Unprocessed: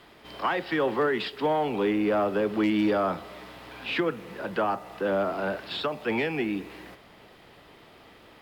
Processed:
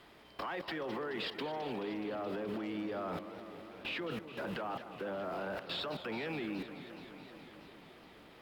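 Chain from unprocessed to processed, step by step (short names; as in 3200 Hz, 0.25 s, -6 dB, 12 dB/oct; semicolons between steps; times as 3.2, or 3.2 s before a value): limiter -25 dBFS, peak gain reduction 8.5 dB; level quantiser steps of 20 dB; warbling echo 0.212 s, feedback 79%, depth 187 cents, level -12.5 dB; gain +1 dB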